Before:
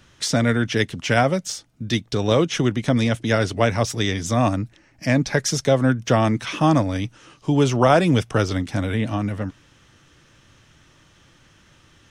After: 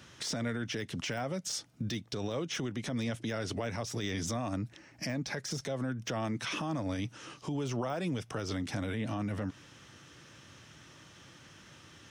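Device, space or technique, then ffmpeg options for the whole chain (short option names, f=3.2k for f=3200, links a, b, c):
broadcast voice chain: -af "highpass=96,deesser=0.6,acompressor=threshold=-27dB:ratio=5,equalizer=f=5.4k:t=o:w=0.33:g=2.5,alimiter=level_in=2.5dB:limit=-24dB:level=0:latency=1:release=60,volume=-2.5dB"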